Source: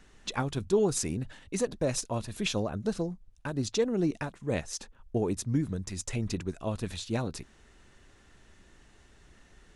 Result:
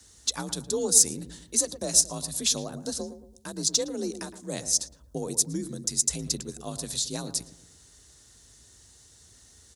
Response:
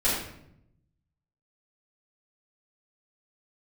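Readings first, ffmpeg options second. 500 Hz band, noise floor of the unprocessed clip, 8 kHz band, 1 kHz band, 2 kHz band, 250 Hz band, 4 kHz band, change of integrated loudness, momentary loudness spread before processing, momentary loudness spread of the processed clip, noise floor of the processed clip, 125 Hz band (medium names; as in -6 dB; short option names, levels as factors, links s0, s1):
-3.5 dB, -59 dBFS, +15.0 dB, -3.0 dB, -4.5 dB, -3.5 dB, +9.5 dB, +6.0 dB, 9 LU, 15 LU, -56 dBFS, -6.5 dB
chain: -filter_complex "[0:a]asplit=2[s0][s1];[s1]adelay=113,lowpass=f=1000:p=1,volume=0.316,asplit=2[s2][s3];[s3]adelay=113,lowpass=f=1000:p=1,volume=0.45,asplit=2[s4][s5];[s5]adelay=113,lowpass=f=1000:p=1,volume=0.45,asplit=2[s6][s7];[s7]adelay=113,lowpass=f=1000:p=1,volume=0.45,asplit=2[s8][s9];[s9]adelay=113,lowpass=f=1000:p=1,volume=0.45[s10];[s0][s2][s4][s6][s8][s10]amix=inputs=6:normalize=0,afreqshift=42,aexciter=amount=6.2:drive=7.5:freq=3800,volume=0.596"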